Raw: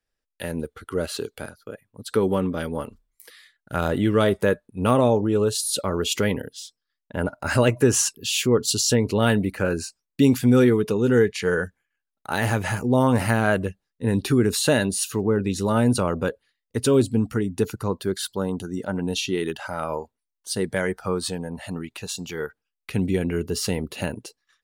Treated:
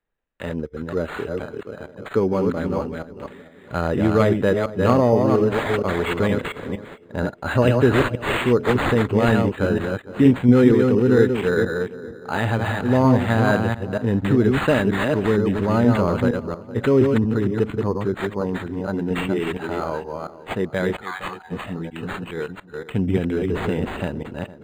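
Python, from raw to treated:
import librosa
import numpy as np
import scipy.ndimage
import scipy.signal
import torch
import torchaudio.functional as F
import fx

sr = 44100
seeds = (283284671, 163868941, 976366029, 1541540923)

y = fx.reverse_delay(x, sr, ms=233, wet_db=-3.5)
y = fx.brickwall_highpass(y, sr, low_hz=700.0, at=(21.0, 21.5), fade=0.02)
y = fx.echo_tape(y, sr, ms=461, feedback_pct=43, wet_db=-15, lp_hz=1200.0, drive_db=3.0, wow_cents=8)
y = np.interp(np.arange(len(y)), np.arange(len(y))[::8], y[::8])
y = y * 10.0 ** (1.5 / 20.0)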